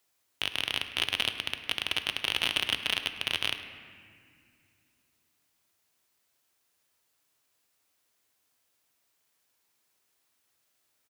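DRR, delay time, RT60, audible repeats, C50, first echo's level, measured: 8.0 dB, 0.104 s, 2.2 s, 1, 9.0 dB, -18.0 dB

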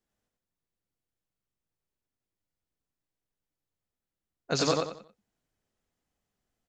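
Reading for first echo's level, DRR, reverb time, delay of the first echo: -3.0 dB, none, none, 91 ms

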